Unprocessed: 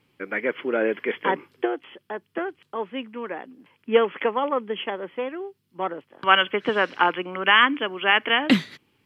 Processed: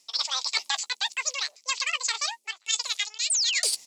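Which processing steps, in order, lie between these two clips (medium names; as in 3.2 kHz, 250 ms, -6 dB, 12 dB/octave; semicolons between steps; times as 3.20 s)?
painted sound fall, 7.72–8.43 s, 770–3900 Hz -16 dBFS; graphic EQ 125/250/500/1000/2000/4000 Hz -6/-4/-3/+7/+9/+10 dB; speed mistake 33 rpm record played at 78 rpm; treble shelf 3.5 kHz +10 dB; reverse; compression 10:1, threshold -28 dBFS, peak gain reduction 31 dB; reverse; doubling 14 ms -12.5 dB; trim +3 dB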